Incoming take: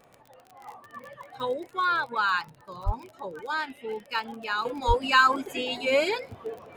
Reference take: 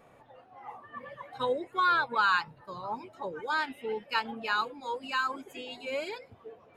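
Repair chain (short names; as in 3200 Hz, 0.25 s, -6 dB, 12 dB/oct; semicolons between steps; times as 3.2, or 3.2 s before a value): de-click; de-plosive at 2.85/4.87; gain 0 dB, from 4.65 s -11 dB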